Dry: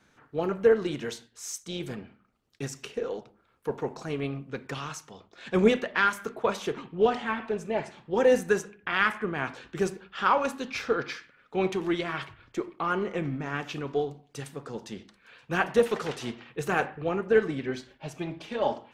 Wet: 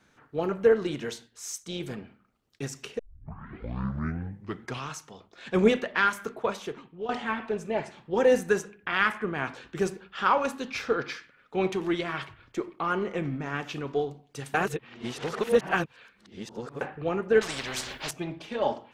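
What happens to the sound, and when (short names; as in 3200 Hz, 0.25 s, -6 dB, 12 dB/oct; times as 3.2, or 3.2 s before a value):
2.99 tape start 1.90 s
6.25–7.09 fade out, to -15 dB
14.54–16.81 reverse
17.41–18.11 spectral compressor 4:1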